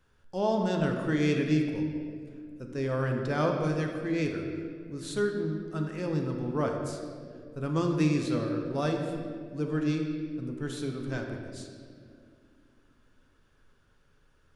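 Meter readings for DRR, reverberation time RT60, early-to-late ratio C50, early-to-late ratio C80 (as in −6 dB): 2.0 dB, 2.2 s, 4.0 dB, 5.0 dB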